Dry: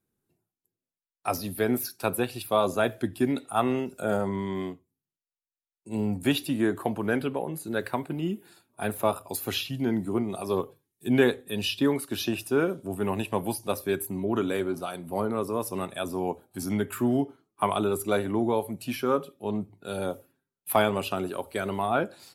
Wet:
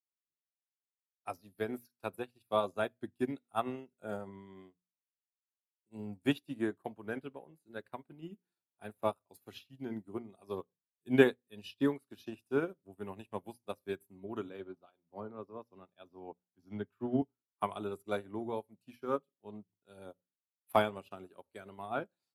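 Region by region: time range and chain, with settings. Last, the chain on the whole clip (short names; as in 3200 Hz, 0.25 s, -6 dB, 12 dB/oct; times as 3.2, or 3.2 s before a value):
14.49–17.22 running mean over 5 samples + bell 2000 Hz -4.5 dB 0.32 oct + three-band expander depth 40%
whole clip: high shelf 4500 Hz -3.5 dB; notches 60/120/180/240 Hz; upward expander 2.5:1, over -41 dBFS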